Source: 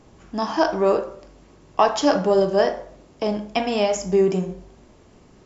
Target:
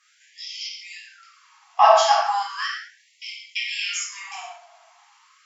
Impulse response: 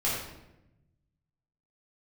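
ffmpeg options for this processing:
-filter_complex "[1:a]atrim=start_sample=2205,afade=t=out:st=0.26:d=0.01,atrim=end_sample=11907[a];[0:a][a]afir=irnorm=-1:irlink=0,afftfilt=real='re*gte(b*sr/1024,610*pow(2000/610,0.5+0.5*sin(2*PI*0.37*pts/sr)))':imag='im*gte(b*sr/1024,610*pow(2000/610,0.5+0.5*sin(2*PI*0.37*pts/sr)))':win_size=1024:overlap=0.75,volume=-3.5dB"

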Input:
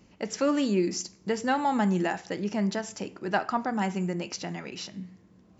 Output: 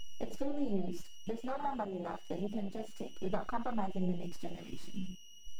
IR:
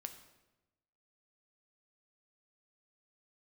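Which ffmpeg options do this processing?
-filter_complex "[0:a]acrusher=bits=8:dc=4:mix=0:aa=0.000001,aeval=exprs='val(0)+0.0178*sin(2*PI*2900*n/s)':c=same,aeval=exprs='max(val(0),0)':c=same,acompressor=threshold=-35dB:ratio=5,asettb=1/sr,asplit=3[a][b][c];[a]atrim=end=1.024[d];[b]atrim=start=1.02:end=3.17,asetpts=PTS-STARTPTS,afade=t=in:d=0.004:c=qsin,afade=t=out:st=2.146:d=0.004:c=qsin,lowshelf=f=160:g=-7[e];[c]atrim=start=3.166[f];[d][e]acrossfade=d=0.004:c1=hsin:c2=qsin[g];[g][f]acrossfade=d=0.004:c1=qsin:c2=hsin[h];[1:a]atrim=start_sample=2205,atrim=end_sample=4410[i];[h][i]afir=irnorm=-1:irlink=0,flanger=delay=4.5:depth=5.3:regen=21:speed=1.2:shape=sinusoidal,afwtdn=0.00501,volume=12.5dB"

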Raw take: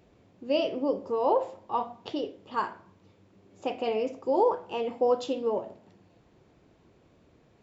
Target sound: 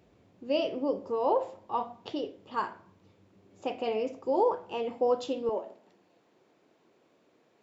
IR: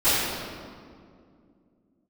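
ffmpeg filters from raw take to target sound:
-af "asetnsamples=n=441:p=0,asendcmd='5.49 highpass f 300',highpass=49,volume=-2dB"

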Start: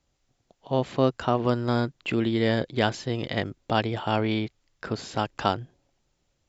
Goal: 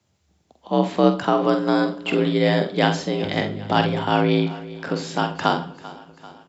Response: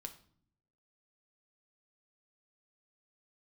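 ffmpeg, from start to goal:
-filter_complex "[0:a]aecho=1:1:391|782|1173|1564|1955:0.126|0.073|0.0424|0.0246|0.0142,asettb=1/sr,asplit=3[a][b][c];[a]atrim=end=3.234[d];[b]atrim=start=3.23:end=4.1,asetpts=PTS-STARTPTS,afade=t=in:d=0.004:c=qsin,afade=t=out:st=0.866:d=0.004:c=qsin,aeval=exprs='val(0)+0.0141*(sin(2*PI*50*n/s)+sin(2*PI*2*50*n/s)/2+sin(2*PI*3*50*n/s)/3+sin(2*PI*4*50*n/s)/4+sin(2*PI*5*50*n/s)/5)':c=same[e];[c]atrim=start=4.096[f];[d][e]acrossfade=d=0.004:c1=hsin:c2=qsin[g];[g][f]acrossfade=d=0.004:c1=qsin:c2=hsin,asplit=2[h][i];[1:a]atrim=start_sample=2205,adelay=46[j];[i][j]afir=irnorm=-1:irlink=0,volume=-1.5dB[k];[h][k]amix=inputs=2:normalize=0,afreqshift=55,volume=4dB"

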